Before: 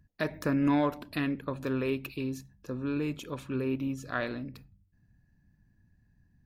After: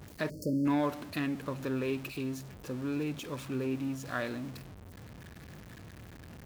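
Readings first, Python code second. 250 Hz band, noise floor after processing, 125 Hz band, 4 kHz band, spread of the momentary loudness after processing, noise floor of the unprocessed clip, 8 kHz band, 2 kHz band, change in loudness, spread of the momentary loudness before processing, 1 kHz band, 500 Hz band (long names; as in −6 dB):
−2.0 dB, −50 dBFS, −2.0 dB, −0.5 dB, 19 LU, −69 dBFS, +3.0 dB, −2.5 dB, −2.5 dB, 12 LU, −2.5 dB, −2.5 dB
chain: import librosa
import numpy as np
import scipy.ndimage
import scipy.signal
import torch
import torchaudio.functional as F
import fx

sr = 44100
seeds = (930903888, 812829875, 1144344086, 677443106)

y = x + 0.5 * 10.0 ** (-38.5 / 20.0) * np.sign(x)
y = scipy.signal.sosfilt(scipy.signal.butter(2, 59.0, 'highpass', fs=sr, output='sos'), y)
y = fx.spec_erase(y, sr, start_s=0.3, length_s=0.36, low_hz=620.0, high_hz=4300.0)
y = F.gain(torch.from_numpy(y), -3.5).numpy()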